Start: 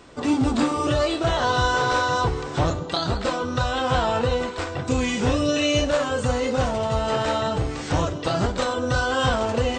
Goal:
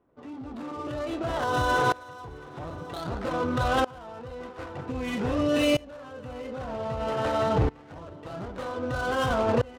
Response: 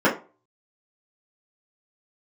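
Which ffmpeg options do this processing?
-af "highshelf=f=3.7k:g=-11.5,adynamicsmooth=sensitivity=6.5:basefreq=920,lowshelf=f=75:g=-7.5,aecho=1:1:667|1334|2001:0.2|0.0658|0.0217,alimiter=limit=-18.5dB:level=0:latency=1:release=38,aeval=exprs='val(0)*pow(10,-24*if(lt(mod(-0.52*n/s,1),2*abs(-0.52)/1000),1-mod(-0.52*n/s,1)/(2*abs(-0.52)/1000),(mod(-0.52*n/s,1)-2*abs(-0.52)/1000)/(1-2*abs(-0.52)/1000))/20)':c=same,volume=5dB"

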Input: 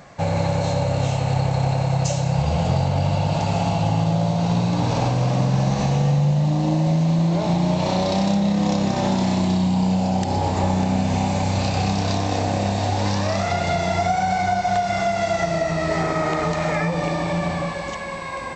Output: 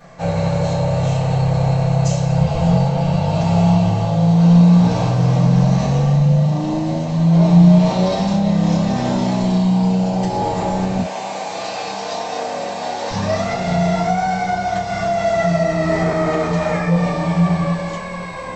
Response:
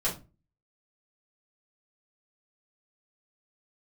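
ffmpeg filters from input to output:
-filter_complex "[0:a]asettb=1/sr,asplit=3[a][b][c];[a]atrim=end=10.984[d];[b]atrim=start=10.98:end=13.11,asetpts=PTS-STARTPTS,afade=t=in:d=0.004:c=qsin,afade=t=out:st=2.126:d=0.004:c=qsin,highpass=450[e];[c]atrim=start=13.106[f];[d][e]acrossfade=d=0.004:c1=hsin:c2=qsin[g];[g][f]acrossfade=d=0.004:c1=qsin:c2=hsin[h];[1:a]atrim=start_sample=2205,atrim=end_sample=3969[i];[h][i]afir=irnorm=-1:irlink=0,volume=-6dB"

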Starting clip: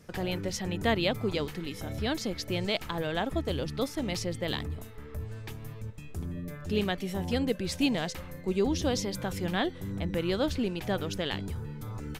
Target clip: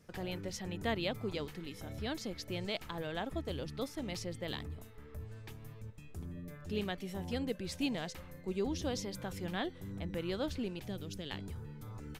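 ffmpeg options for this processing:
-filter_complex "[0:a]asettb=1/sr,asplit=3[a][b][c];[a]atrim=end=10.794[d];[b]atrim=start=10.79:end=11.31,asetpts=PTS-STARTPTS,afade=t=in:d=0.004:c=qsin,afade=t=out:st=0.516:d=0.004:c=qsin,acrossover=split=390|3000[e][f][g];[f]acompressor=threshold=-54dB:ratio=2[h];[e][h][g]amix=inputs=3:normalize=0[i];[c]atrim=start=11.306[j];[d][i]acrossfade=d=0.004:c1=hsin:c2=qsin[k];[k][j]acrossfade=d=0.004:c1=qsin:c2=hsin,volume=-8dB"

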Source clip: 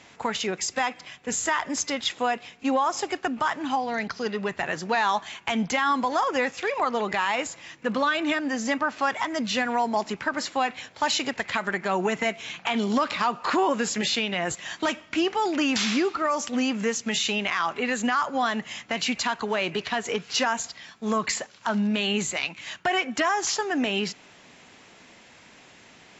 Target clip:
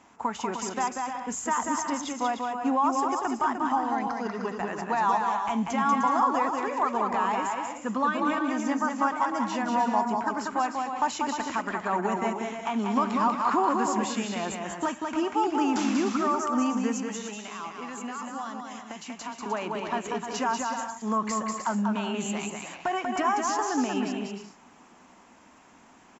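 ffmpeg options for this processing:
-filter_complex "[0:a]asettb=1/sr,asplit=3[a][b][c];[a]atrim=end=16.994[d];[b]atrim=start=16.99:end=19.46,asetpts=PTS-STARTPTS,afade=t=in:d=0.004:c=qsin,afade=t=out:st=2.466:d=0.004:c=qsin,acrossover=split=450|3400[e][f][g];[e]acompressor=threshold=-41dB:ratio=4[h];[f]acompressor=threshold=-36dB:ratio=4[i];[g]acompressor=threshold=-34dB:ratio=4[j];[h][i][j]amix=inputs=3:normalize=0[k];[c]atrim=start=19.456[l];[d][k]acrossfade=d=0.004:c1=hsin:c2=qsin[m];[m][l]acrossfade=d=0.004:c1=qsin:c2=hsin,equalizer=f=125:t=o:w=1:g=-9,equalizer=f=250:t=o:w=1:g=5,equalizer=f=500:t=o:w=1:g=-6,equalizer=f=1k:t=o:w=1:g=7,equalizer=f=2k:t=o:w=1:g=-7,equalizer=f=4k:t=o:w=1:g=-12,aecho=1:1:190|304|372.4|413.4|438.1:0.631|0.398|0.251|0.158|0.1,volume=-3dB"

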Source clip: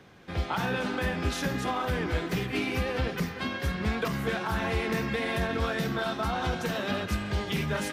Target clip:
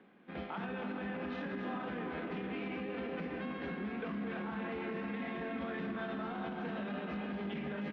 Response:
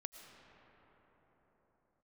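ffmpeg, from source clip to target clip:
-filter_complex "[0:a]asplit=2[a][b];[b]acrusher=bits=4:mix=0:aa=0.5,volume=-9dB[c];[a][c]amix=inputs=2:normalize=0,lowpass=f=3k:w=0.5412,lowpass=f=3k:w=1.3066,lowshelf=f=150:t=q:w=3:g=-12.5,asplit=2[d][e];[e]adelay=25,volume=-7dB[f];[d][f]amix=inputs=2:normalize=0,aecho=1:1:319:0.266[g];[1:a]atrim=start_sample=2205[h];[g][h]afir=irnorm=-1:irlink=0,areverse,acompressor=mode=upward:threshold=-48dB:ratio=2.5,areverse,alimiter=level_in=1.5dB:limit=-24dB:level=0:latency=1:release=65,volume=-1.5dB,volume=-6dB"

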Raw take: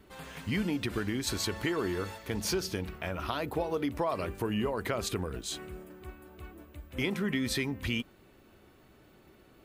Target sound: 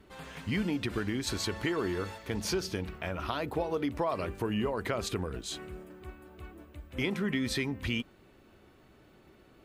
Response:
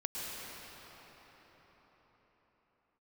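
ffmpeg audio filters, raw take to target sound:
-af "highshelf=f=11k:g=-10"

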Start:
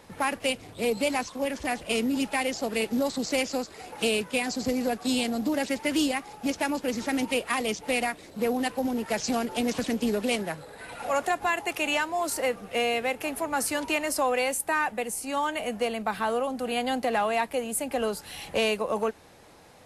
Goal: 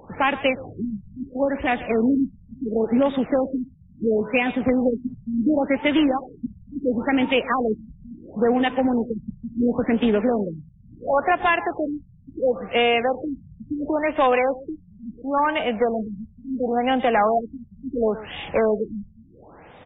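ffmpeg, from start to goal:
-filter_complex "[0:a]asplit=2[a][b];[b]aeval=exprs='(mod(7.94*val(0)+1,2)-1)/7.94':c=same,volume=-9dB[c];[a][c]amix=inputs=2:normalize=0,aecho=1:1:124:0.15,afftfilt=real='re*lt(b*sr/1024,200*pow(3800/200,0.5+0.5*sin(2*PI*0.72*pts/sr)))':imag='im*lt(b*sr/1024,200*pow(3800/200,0.5+0.5*sin(2*PI*0.72*pts/sr)))':win_size=1024:overlap=0.75,volume=5dB"

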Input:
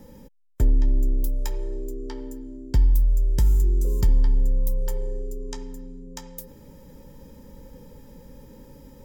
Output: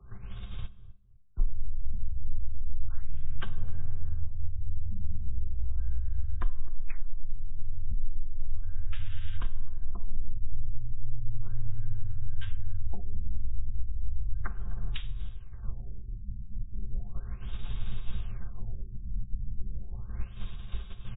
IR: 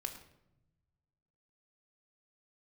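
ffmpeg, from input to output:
-filter_complex "[0:a]agate=range=-21dB:threshold=-44dB:ratio=16:detection=peak,acontrast=54,alimiter=limit=-22.5dB:level=0:latency=1:release=193,acrossover=split=150|440[a][b][c];[a]acompressor=threshold=-34dB:ratio=4[d];[b]acompressor=threshold=-51dB:ratio=4[e];[c]acompressor=threshold=-58dB:ratio=4[f];[d][e][f]amix=inputs=3:normalize=0,asetrate=22696,aresample=44100,atempo=1.94306,asplit=2[g][h];[h]adelay=110,lowpass=f=1.1k:p=1,volume=-14dB,asplit=2[i][j];[j]adelay=110,lowpass=f=1.1k:p=1,volume=0.3,asplit=2[k][l];[l]adelay=110,lowpass=f=1.1k:p=1,volume=0.3[m];[g][i][k][m]amix=inputs=4:normalize=0,asplit=2[n][o];[1:a]atrim=start_sample=2205,atrim=end_sample=6174[p];[o][p]afir=irnorm=-1:irlink=0,volume=-7.5dB[q];[n][q]amix=inputs=2:normalize=0,asetrate=18846,aresample=44100,afftfilt=real='re*lt(b*sr/1024,270*pow(5800/270,0.5+0.5*sin(2*PI*0.35*pts/sr)))':imag='im*lt(b*sr/1024,270*pow(5800/270,0.5+0.5*sin(2*PI*0.35*pts/sr)))':win_size=1024:overlap=0.75,volume=10.5dB"

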